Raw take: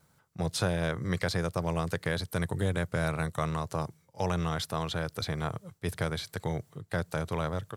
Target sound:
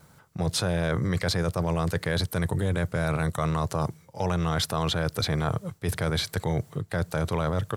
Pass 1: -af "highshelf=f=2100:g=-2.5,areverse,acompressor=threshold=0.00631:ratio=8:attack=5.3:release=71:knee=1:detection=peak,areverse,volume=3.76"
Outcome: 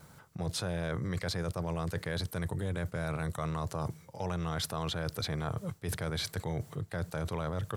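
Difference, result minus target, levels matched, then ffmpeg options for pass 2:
compression: peak gain reduction +8.5 dB
-af "highshelf=f=2100:g=-2.5,areverse,acompressor=threshold=0.0188:ratio=8:attack=5.3:release=71:knee=1:detection=peak,areverse,volume=3.76"

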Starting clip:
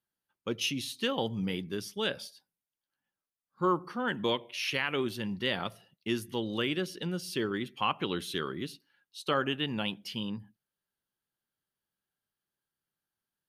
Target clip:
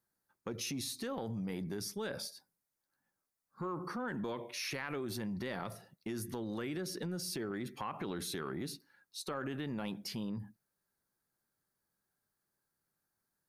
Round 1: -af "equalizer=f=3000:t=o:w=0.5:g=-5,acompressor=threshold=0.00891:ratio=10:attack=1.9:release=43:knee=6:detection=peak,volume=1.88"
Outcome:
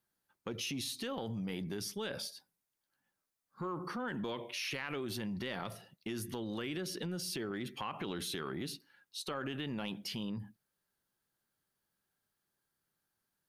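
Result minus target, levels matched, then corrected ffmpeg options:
4 kHz band +2.5 dB
-af "equalizer=f=3000:t=o:w=0.5:g=-16.5,acompressor=threshold=0.00891:ratio=10:attack=1.9:release=43:knee=6:detection=peak,volume=1.88"

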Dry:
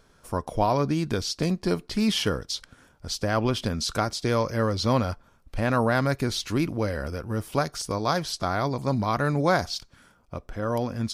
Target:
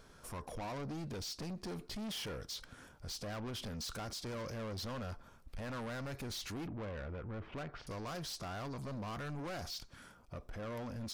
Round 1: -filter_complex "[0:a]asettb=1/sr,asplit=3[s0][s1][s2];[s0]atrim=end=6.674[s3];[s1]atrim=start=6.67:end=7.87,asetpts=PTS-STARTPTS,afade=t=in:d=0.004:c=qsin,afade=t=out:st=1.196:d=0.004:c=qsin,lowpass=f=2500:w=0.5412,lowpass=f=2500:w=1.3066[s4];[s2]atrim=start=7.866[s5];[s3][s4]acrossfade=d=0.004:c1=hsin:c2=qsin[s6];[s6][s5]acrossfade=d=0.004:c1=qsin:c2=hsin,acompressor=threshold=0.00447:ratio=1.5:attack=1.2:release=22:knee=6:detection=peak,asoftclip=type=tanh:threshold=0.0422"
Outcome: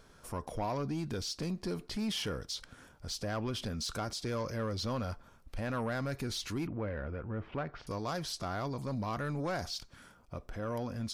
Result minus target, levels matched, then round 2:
saturation: distortion -10 dB
-filter_complex "[0:a]asettb=1/sr,asplit=3[s0][s1][s2];[s0]atrim=end=6.674[s3];[s1]atrim=start=6.67:end=7.87,asetpts=PTS-STARTPTS,afade=t=in:d=0.004:c=qsin,afade=t=out:st=1.196:d=0.004:c=qsin,lowpass=f=2500:w=0.5412,lowpass=f=2500:w=1.3066[s4];[s2]atrim=start=7.866[s5];[s3][s4]acrossfade=d=0.004:c1=hsin:c2=qsin[s6];[s6][s5]acrossfade=d=0.004:c1=qsin:c2=hsin,acompressor=threshold=0.00447:ratio=1.5:attack=1.2:release=22:knee=6:detection=peak,asoftclip=type=tanh:threshold=0.0106"

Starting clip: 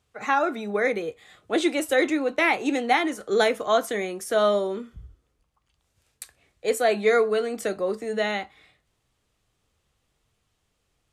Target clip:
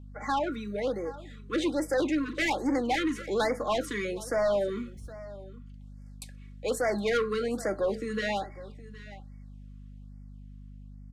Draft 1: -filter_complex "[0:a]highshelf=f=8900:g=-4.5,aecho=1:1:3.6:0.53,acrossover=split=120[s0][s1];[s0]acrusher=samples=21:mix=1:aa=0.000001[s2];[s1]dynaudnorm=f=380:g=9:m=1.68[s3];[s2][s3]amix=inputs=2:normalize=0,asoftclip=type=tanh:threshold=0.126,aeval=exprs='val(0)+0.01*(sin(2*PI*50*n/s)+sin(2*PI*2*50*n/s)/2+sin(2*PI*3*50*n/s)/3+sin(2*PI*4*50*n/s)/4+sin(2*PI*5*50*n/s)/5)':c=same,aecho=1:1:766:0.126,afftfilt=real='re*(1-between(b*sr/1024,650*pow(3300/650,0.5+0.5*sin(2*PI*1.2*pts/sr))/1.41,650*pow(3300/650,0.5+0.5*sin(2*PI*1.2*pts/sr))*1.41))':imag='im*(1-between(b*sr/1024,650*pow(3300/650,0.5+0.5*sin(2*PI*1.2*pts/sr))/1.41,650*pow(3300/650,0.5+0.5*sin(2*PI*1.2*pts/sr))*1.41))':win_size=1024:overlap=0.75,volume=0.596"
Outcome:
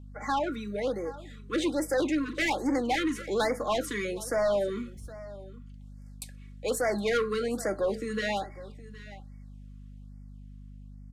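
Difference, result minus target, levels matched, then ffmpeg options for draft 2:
8 kHz band +3.0 dB
-filter_complex "[0:a]highshelf=f=8900:g=-13,aecho=1:1:3.6:0.53,acrossover=split=120[s0][s1];[s0]acrusher=samples=21:mix=1:aa=0.000001[s2];[s1]dynaudnorm=f=380:g=9:m=1.68[s3];[s2][s3]amix=inputs=2:normalize=0,asoftclip=type=tanh:threshold=0.126,aeval=exprs='val(0)+0.01*(sin(2*PI*50*n/s)+sin(2*PI*2*50*n/s)/2+sin(2*PI*3*50*n/s)/3+sin(2*PI*4*50*n/s)/4+sin(2*PI*5*50*n/s)/5)':c=same,aecho=1:1:766:0.126,afftfilt=real='re*(1-between(b*sr/1024,650*pow(3300/650,0.5+0.5*sin(2*PI*1.2*pts/sr))/1.41,650*pow(3300/650,0.5+0.5*sin(2*PI*1.2*pts/sr))*1.41))':imag='im*(1-between(b*sr/1024,650*pow(3300/650,0.5+0.5*sin(2*PI*1.2*pts/sr))/1.41,650*pow(3300/650,0.5+0.5*sin(2*PI*1.2*pts/sr))*1.41))':win_size=1024:overlap=0.75,volume=0.596"

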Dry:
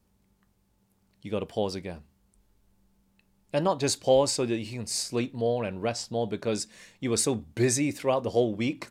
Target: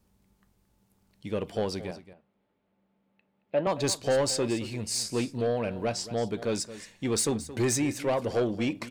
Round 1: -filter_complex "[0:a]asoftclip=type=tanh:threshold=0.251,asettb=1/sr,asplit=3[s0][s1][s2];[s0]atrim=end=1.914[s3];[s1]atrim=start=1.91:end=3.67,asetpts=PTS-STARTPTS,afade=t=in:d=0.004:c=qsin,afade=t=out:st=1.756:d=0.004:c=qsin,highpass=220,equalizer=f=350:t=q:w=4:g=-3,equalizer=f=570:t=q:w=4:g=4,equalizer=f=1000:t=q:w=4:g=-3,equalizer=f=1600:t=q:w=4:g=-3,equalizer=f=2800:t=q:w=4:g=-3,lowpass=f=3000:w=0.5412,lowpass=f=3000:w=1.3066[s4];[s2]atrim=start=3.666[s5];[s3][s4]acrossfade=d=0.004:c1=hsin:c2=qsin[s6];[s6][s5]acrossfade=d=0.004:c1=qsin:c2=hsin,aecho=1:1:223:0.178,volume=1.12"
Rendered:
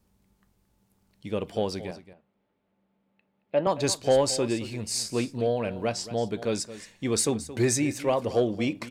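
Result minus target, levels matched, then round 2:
saturation: distortion -11 dB
-filter_complex "[0:a]asoftclip=type=tanh:threshold=0.0891,asettb=1/sr,asplit=3[s0][s1][s2];[s0]atrim=end=1.914[s3];[s1]atrim=start=1.91:end=3.67,asetpts=PTS-STARTPTS,afade=t=in:d=0.004:c=qsin,afade=t=out:st=1.756:d=0.004:c=qsin,highpass=220,equalizer=f=350:t=q:w=4:g=-3,equalizer=f=570:t=q:w=4:g=4,equalizer=f=1000:t=q:w=4:g=-3,equalizer=f=1600:t=q:w=4:g=-3,equalizer=f=2800:t=q:w=4:g=-3,lowpass=f=3000:w=0.5412,lowpass=f=3000:w=1.3066[s4];[s2]atrim=start=3.666[s5];[s3][s4]acrossfade=d=0.004:c1=hsin:c2=qsin[s6];[s6][s5]acrossfade=d=0.004:c1=qsin:c2=hsin,aecho=1:1:223:0.178,volume=1.12"

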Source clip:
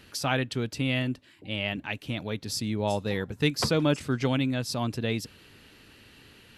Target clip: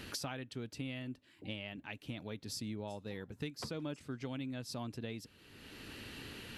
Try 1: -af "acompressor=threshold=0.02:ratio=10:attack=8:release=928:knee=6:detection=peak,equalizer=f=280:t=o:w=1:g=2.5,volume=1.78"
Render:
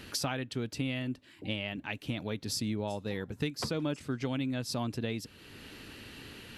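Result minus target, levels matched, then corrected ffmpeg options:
compression: peak gain reduction -8 dB
-af "acompressor=threshold=0.00708:ratio=10:attack=8:release=928:knee=6:detection=peak,equalizer=f=280:t=o:w=1:g=2.5,volume=1.78"

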